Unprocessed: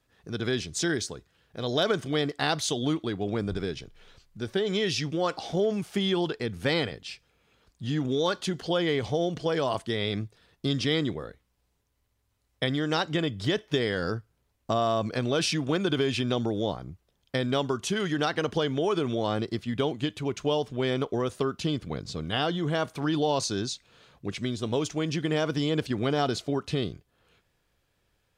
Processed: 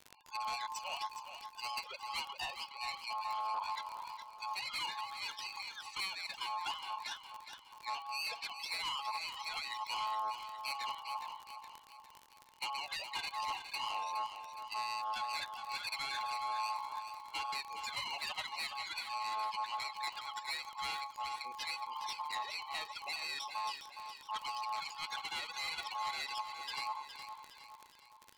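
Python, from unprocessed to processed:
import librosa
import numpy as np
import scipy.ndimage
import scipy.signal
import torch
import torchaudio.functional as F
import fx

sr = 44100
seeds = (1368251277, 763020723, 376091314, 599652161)

p1 = scipy.signal.sosfilt(scipy.signal.cheby1(4, 1.0, [110.0, 1900.0], 'bandstop', fs=sr, output='sos'), x)
p2 = fx.env_lowpass_down(p1, sr, base_hz=480.0, full_db=-25.0)
p3 = fx.spec_topn(p2, sr, count=16)
p4 = fx.dispersion(p3, sr, late='lows', ms=43.0, hz=650.0)
p5 = fx.dmg_crackle(p4, sr, seeds[0], per_s=55.0, level_db=-43.0)
p6 = fx.tube_stage(p5, sr, drive_db=40.0, bias=0.4)
p7 = p6 * np.sin(2.0 * np.pi * 970.0 * np.arange(len(p6)) / sr)
p8 = p7 + fx.echo_feedback(p7, sr, ms=415, feedback_pct=46, wet_db=-9, dry=0)
y = F.gain(torch.from_numpy(p8), 8.0).numpy()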